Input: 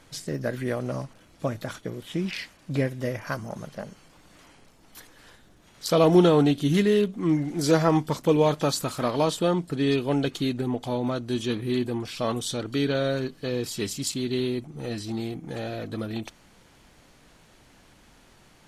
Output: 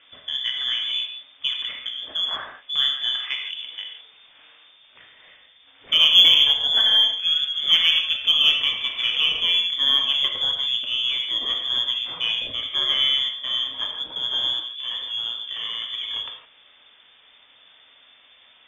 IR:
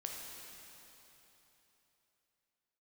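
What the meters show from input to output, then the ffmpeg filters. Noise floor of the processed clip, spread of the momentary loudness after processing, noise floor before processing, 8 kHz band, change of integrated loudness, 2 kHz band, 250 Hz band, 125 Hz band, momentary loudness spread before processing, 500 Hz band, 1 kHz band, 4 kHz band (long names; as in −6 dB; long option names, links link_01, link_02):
−54 dBFS, 13 LU, −56 dBFS, can't be measured, +6.5 dB, +7.5 dB, below −25 dB, below −20 dB, 13 LU, −21.0 dB, −7.0 dB, +20.5 dB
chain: -filter_complex "[0:a]lowpass=frequency=3100:width_type=q:width=0.5098,lowpass=frequency=3100:width_type=q:width=0.6013,lowpass=frequency=3100:width_type=q:width=0.9,lowpass=frequency=3100:width_type=q:width=2.563,afreqshift=-3600[link_01];[1:a]atrim=start_sample=2205,afade=type=out:start_time=0.22:duration=0.01,atrim=end_sample=10143[link_02];[link_01][link_02]afir=irnorm=-1:irlink=0,aeval=exprs='0.422*(cos(1*acos(clip(val(0)/0.422,-1,1)))-cos(1*PI/2))+0.0119*(cos(6*acos(clip(val(0)/0.422,-1,1)))-cos(6*PI/2))+0.0106*(cos(8*acos(clip(val(0)/0.422,-1,1)))-cos(8*PI/2))':channel_layout=same,volume=5dB"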